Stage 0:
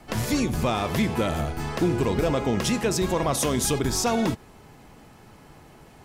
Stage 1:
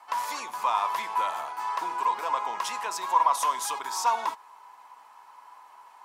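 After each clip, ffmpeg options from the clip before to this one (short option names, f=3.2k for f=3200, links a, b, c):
-af "highpass=f=980:t=q:w=11,volume=-7dB"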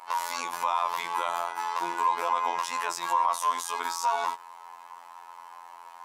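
-af "afftfilt=real='hypot(re,im)*cos(PI*b)':imag='0':win_size=2048:overlap=0.75,alimiter=limit=-21dB:level=0:latency=1:release=122,volume=8.5dB"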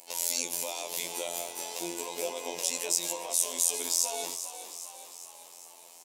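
-filter_complex "[0:a]firequalizer=gain_entry='entry(540,0);entry(1100,-30);entry(2400,-5);entry(7200,9)':delay=0.05:min_phase=1,asplit=2[a][b];[b]asplit=7[c][d][e][f][g][h][i];[c]adelay=403,afreqshift=47,volume=-11dB[j];[d]adelay=806,afreqshift=94,volume=-15.6dB[k];[e]adelay=1209,afreqshift=141,volume=-20.2dB[l];[f]adelay=1612,afreqshift=188,volume=-24.7dB[m];[g]adelay=2015,afreqshift=235,volume=-29.3dB[n];[h]adelay=2418,afreqshift=282,volume=-33.9dB[o];[i]adelay=2821,afreqshift=329,volume=-38.5dB[p];[j][k][l][m][n][o][p]amix=inputs=7:normalize=0[q];[a][q]amix=inputs=2:normalize=0,volume=3dB"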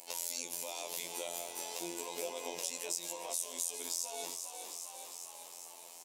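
-af "acompressor=threshold=-40dB:ratio=2"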